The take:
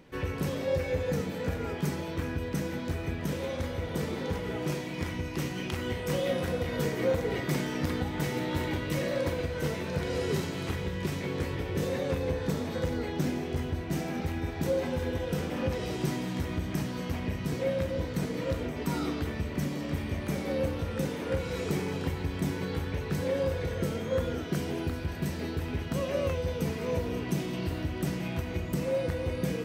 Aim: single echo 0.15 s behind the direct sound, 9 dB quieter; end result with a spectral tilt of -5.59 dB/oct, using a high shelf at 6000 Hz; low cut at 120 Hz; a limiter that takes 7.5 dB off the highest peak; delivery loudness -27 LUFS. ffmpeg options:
-af "highpass=120,highshelf=f=6k:g=-6,alimiter=level_in=0.5dB:limit=-24dB:level=0:latency=1,volume=-0.5dB,aecho=1:1:150:0.355,volume=7dB"

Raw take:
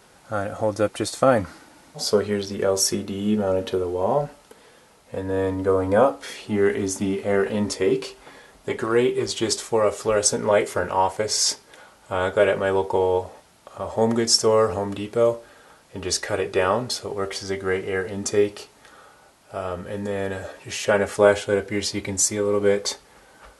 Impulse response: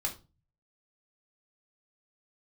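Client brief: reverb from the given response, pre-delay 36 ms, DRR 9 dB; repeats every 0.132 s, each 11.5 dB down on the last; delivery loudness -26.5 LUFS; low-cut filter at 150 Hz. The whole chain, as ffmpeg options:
-filter_complex "[0:a]highpass=150,aecho=1:1:132|264|396:0.266|0.0718|0.0194,asplit=2[a][b];[1:a]atrim=start_sample=2205,adelay=36[c];[b][c]afir=irnorm=-1:irlink=0,volume=-12dB[d];[a][d]amix=inputs=2:normalize=0,volume=-4.5dB"

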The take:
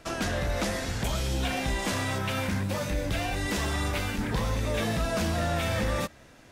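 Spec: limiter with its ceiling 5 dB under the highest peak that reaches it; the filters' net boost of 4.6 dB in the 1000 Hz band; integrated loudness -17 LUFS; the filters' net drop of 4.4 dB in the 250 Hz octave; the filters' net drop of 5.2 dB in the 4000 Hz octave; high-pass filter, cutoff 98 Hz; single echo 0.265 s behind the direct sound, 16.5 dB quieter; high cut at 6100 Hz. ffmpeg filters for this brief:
-af "highpass=98,lowpass=6.1k,equalizer=f=250:t=o:g=-6,equalizer=f=1k:t=o:g=7,equalizer=f=4k:t=o:g=-6.5,alimiter=limit=-22dB:level=0:latency=1,aecho=1:1:265:0.15,volume=14.5dB"

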